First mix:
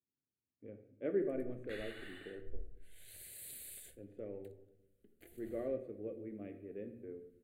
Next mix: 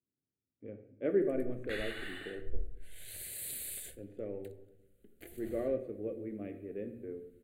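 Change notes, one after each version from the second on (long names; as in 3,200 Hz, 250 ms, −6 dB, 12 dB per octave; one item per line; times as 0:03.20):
speech +5.0 dB
background +8.5 dB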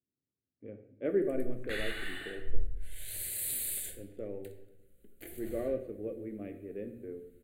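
background: send +11.5 dB
master: add high-shelf EQ 7,400 Hz +5.5 dB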